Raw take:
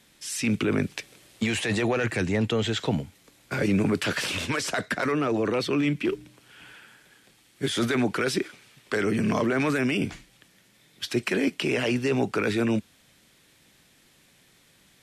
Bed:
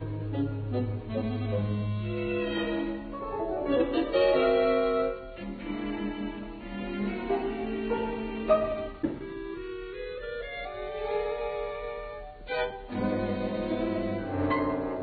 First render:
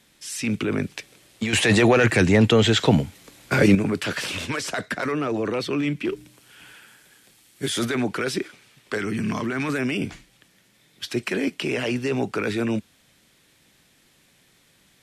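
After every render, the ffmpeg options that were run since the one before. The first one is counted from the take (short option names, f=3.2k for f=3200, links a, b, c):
-filter_complex "[0:a]asettb=1/sr,asplit=3[a][b][c];[a]atrim=end=6.164[d];[b]atrim=start=6.16:end=7.85,asetpts=PTS-STARTPTS,afade=t=in:d=0.004:c=qsin,afade=t=out:st=1.686:d=0.004:c=qsin,highshelf=f=6k:g=9[e];[c]atrim=start=7.846[f];[d][e]acrossfade=d=0.004:c1=hsin:c2=qsin[g];[g][f]acrossfade=d=0.004:c1=qsin:c2=hsin,asettb=1/sr,asplit=3[h][i][j];[h]atrim=end=8.984[k];[i]atrim=start=8.98:end=9.69,asetpts=PTS-STARTPTS,afade=t=in:d=0.004:c=qsin,afade=t=out:st=0.706:d=0.004:c=qsin,equalizer=f=540:w=1.7:g=-9.5[l];[j]atrim=start=9.686[m];[k][l]acrossfade=d=0.004:c1=hsin:c2=qsin[n];[n][m]acrossfade=d=0.004:c1=qsin:c2=hsin,asplit=3[o][p][q];[o]atrim=end=1.532[r];[p]atrim=start=1.528:end=3.752,asetpts=PTS-STARTPTS,volume=8.5dB[s];[q]atrim=start=3.748[t];[r][s]acrossfade=d=0.004:c1=hsin:c2=hsin[u];[u][t]acrossfade=d=0.004:c1=hsin:c2=hsin"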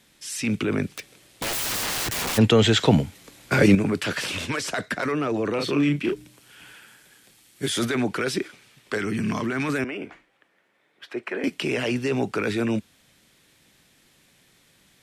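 -filter_complex "[0:a]asplit=3[a][b][c];[a]afade=t=out:st=0.96:d=0.02[d];[b]aeval=exprs='(mod(13.3*val(0)+1,2)-1)/13.3':c=same,afade=t=in:st=0.96:d=0.02,afade=t=out:st=2.37:d=0.02[e];[c]afade=t=in:st=2.37:d=0.02[f];[d][e][f]amix=inputs=3:normalize=0,asettb=1/sr,asplit=3[g][h][i];[g]atrim=end=5.554[j];[h]atrim=start=5.55:end=6.13,asetpts=PTS-STARTPTS,afade=t=in:d=0.004:c=qsin,afade=t=out:st=0.576:d=0.004:c=qsin,asplit=2[k][l];[l]adelay=35,volume=-4dB[m];[k][m]amix=inputs=2:normalize=0,atrim=end_sample=25578[n];[i]atrim=start=6.126[o];[j][n]acrossfade=d=0.004:c1=hsin:c2=qsin[p];[p][o]acrossfade=d=0.004:c1=qsin:c2=hsin,asettb=1/sr,asplit=3[q][r][s];[q]atrim=end=9.844[t];[r]atrim=start=9.84:end=11.44,asetpts=PTS-STARTPTS,afade=t=in:d=0.004:c=qsin,afade=t=out:st=1.596:d=0.004:c=qsin,acrossover=split=330 2300:gain=0.1 1 0.1[u][v][w];[u][v][w]amix=inputs=3:normalize=0[x];[s]atrim=start=11.436[y];[t][x]acrossfade=d=0.004:c1=hsin:c2=qsin[z];[z][y]acrossfade=d=0.004:c1=qsin:c2=hsin"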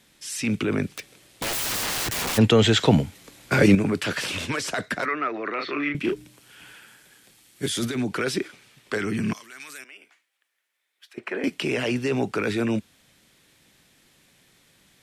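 -filter_complex "[0:a]asettb=1/sr,asplit=3[a][b][c];[a]atrim=end=5.054[d];[b]atrim=start=5.05:end=5.95,asetpts=PTS-STARTPTS,afade=t=in:d=0.004:c=qsin,afade=t=out:st=0.896:d=0.004:c=qsin,highpass=420,equalizer=f=490:t=q:w=4:g=-7,equalizer=f=870:t=q:w=4:g=-5,equalizer=f=1.3k:t=q:w=4:g=6,equalizer=f=2k:t=q:w=4:g=9,equalizer=f=3.1k:t=q:w=4:g=-8,lowpass=f=4k:w=0.5412,lowpass=f=4k:w=1.3066[e];[c]atrim=start=5.946[f];[d][e]acrossfade=d=0.004:c1=hsin:c2=qsin[g];[g][f]acrossfade=d=0.004:c1=qsin:c2=hsin,asettb=1/sr,asplit=3[h][i][j];[h]atrim=end=7.664[k];[i]atrim=start=7.66:end=8.13,asetpts=PTS-STARTPTS,afade=t=in:d=0.004:c=qsin,afade=t=out:st=0.466:d=0.004:c=qsin,acrossover=split=340|3000[l][m][n];[m]acompressor=threshold=-41dB:ratio=2:attack=3.2:release=140:knee=2.83:detection=peak[o];[l][o][n]amix=inputs=3:normalize=0[p];[j]atrim=start=8.126[q];[k][p]acrossfade=d=0.004:c1=hsin:c2=qsin[r];[r][q]acrossfade=d=0.004:c1=qsin:c2=hsin,asettb=1/sr,asplit=3[s][t][u];[s]atrim=end=9.334[v];[t]atrim=start=9.33:end=11.18,asetpts=PTS-STARTPTS,afade=t=in:d=0.004:c=qsin,afade=t=out:st=1.846:d=0.004:c=qsin,aderivative[w];[u]atrim=start=11.176[x];[v][w]acrossfade=d=0.004:c1=hsin:c2=qsin[y];[y][x]acrossfade=d=0.004:c1=qsin:c2=hsin"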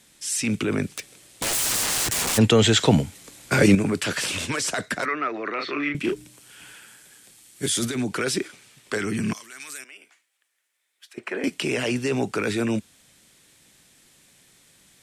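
-af "equalizer=f=8.3k:t=o:w=1.1:g=8"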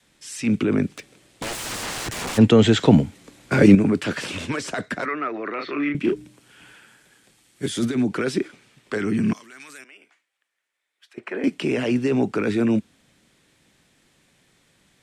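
-af "lowpass=f=2.5k:p=1,adynamicequalizer=threshold=0.0224:dfrequency=250:dqfactor=1:tfrequency=250:tqfactor=1:attack=5:release=100:ratio=0.375:range=3:mode=boostabove:tftype=bell"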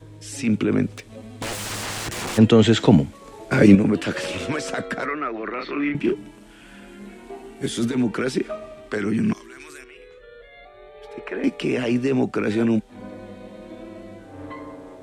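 -filter_complex "[1:a]volume=-9dB[a];[0:a][a]amix=inputs=2:normalize=0"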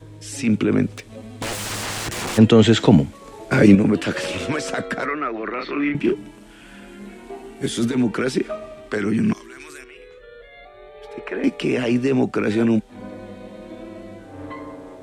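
-af "volume=2dB,alimiter=limit=-2dB:level=0:latency=1"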